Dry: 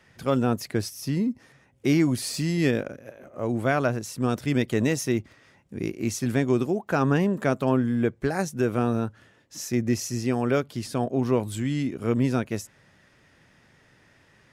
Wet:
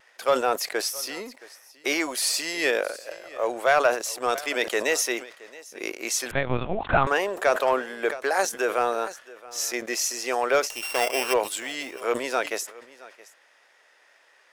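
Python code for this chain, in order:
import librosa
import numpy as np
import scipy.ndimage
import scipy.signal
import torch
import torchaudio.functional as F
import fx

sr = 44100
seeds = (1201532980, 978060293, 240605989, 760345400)

p1 = fx.sample_sort(x, sr, block=16, at=(10.64, 11.32), fade=0.02)
p2 = scipy.signal.sosfilt(scipy.signal.butter(4, 510.0, 'highpass', fs=sr, output='sos'), p1)
p3 = fx.leveller(p2, sr, passes=1)
p4 = fx.vibrato(p3, sr, rate_hz=0.6, depth_cents=12.0)
p5 = p4 + fx.echo_single(p4, sr, ms=671, db=-20.5, dry=0)
p6 = fx.lpc_vocoder(p5, sr, seeds[0], excitation='pitch_kept', order=8, at=(6.31, 7.07))
p7 = fx.sustainer(p6, sr, db_per_s=140.0)
y = p7 * librosa.db_to_amplitude(3.5)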